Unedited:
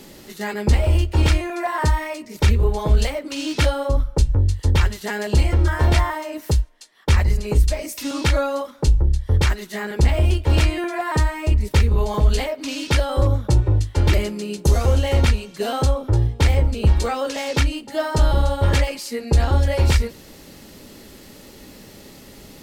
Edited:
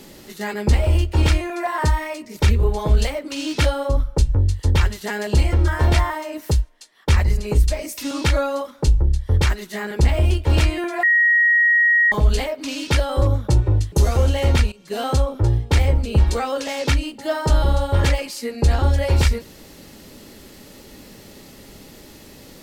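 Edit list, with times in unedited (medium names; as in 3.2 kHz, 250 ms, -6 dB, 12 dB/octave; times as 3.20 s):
11.03–12.12 s: bleep 1.89 kHz -12 dBFS
13.92–14.61 s: delete
15.41–15.72 s: fade in, from -18 dB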